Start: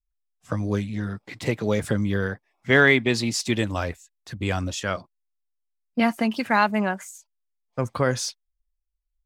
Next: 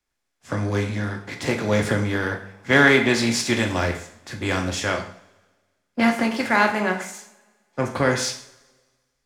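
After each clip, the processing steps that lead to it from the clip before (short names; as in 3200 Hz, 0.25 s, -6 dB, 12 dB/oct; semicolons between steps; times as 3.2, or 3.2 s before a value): per-bin compression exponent 0.6; two-slope reverb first 0.59 s, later 2.5 s, from -20 dB, DRR 3 dB; three-band expander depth 40%; gain -3 dB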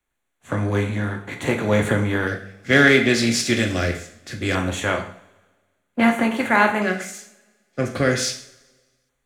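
LFO notch square 0.22 Hz 940–5100 Hz; gain +2 dB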